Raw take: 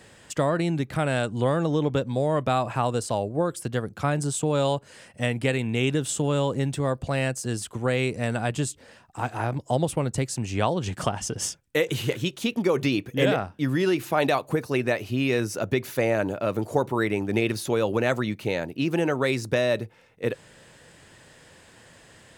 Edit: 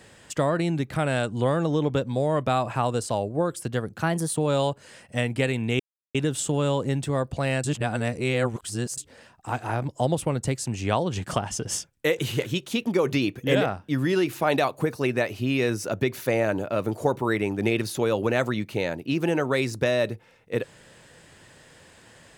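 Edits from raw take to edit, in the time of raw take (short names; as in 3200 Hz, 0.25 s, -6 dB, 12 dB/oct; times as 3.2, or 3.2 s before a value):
3.98–4.42 speed 114%
5.85 insert silence 0.35 s
7.34–8.68 reverse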